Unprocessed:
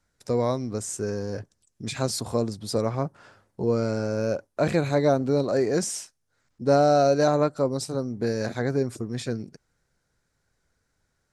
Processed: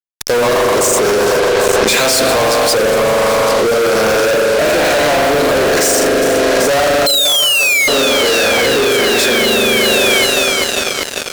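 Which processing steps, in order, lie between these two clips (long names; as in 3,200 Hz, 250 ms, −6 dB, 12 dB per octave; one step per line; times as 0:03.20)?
high-pass filter 600 Hz 12 dB per octave
spring reverb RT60 3.7 s, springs 41 ms, chirp 80 ms, DRR −2 dB
rotating-speaker cabinet horn 8 Hz, later 1.2 Hz, at 0:01.37
sound drawn into the spectrogram fall, 0:07.06–0:07.88, 2,100–4,200 Hz −19 dBFS
on a send: echo machine with several playback heads 395 ms, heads first and second, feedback 71%, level −22.5 dB
on the sum: fuzz pedal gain 48 dB, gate −45 dBFS
in parallel at −1 dB: compressor whose output falls as the input rises −19 dBFS, ratio −0.5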